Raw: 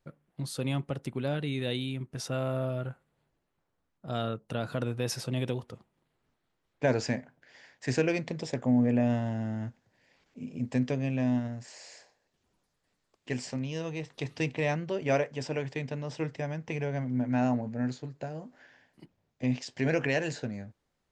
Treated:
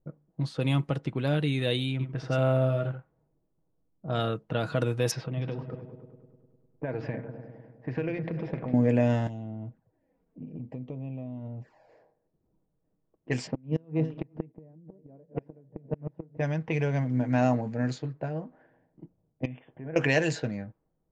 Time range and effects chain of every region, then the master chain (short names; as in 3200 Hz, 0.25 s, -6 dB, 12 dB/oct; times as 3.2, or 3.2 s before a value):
1.91–4.2 high shelf 8500 Hz -10.5 dB + echo 84 ms -9 dB
5.11–8.74 air absorption 200 m + compressor, threshold -33 dBFS + repeats that get brighter 0.101 s, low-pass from 200 Hz, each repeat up 2 oct, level -6 dB
9.27–11.89 compressor 5:1, threshold -38 dBFS + envelope flanger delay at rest 5.1 ms, full sweep at -39 dBFS
13.47–16.37 regenerating reverse delay 0.224 s, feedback 55%, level -13 dB + EQ curve 110 Hz 0 dB, 190 Hz +9 dB, 5200 Hz -16 dB, 8500 Hz -28 dB + flipped gate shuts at -21 dBFS, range -31 dB
19.45–19.96 brick-wall FIR low-pass 3600 Hz + compressor 2:1, threshold -52 dBFS
whole clip: low-pass opened by the level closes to 480 Hz, open at -27.5 dBFS; comb 6.3 ms, depth 35%; gain +4 dB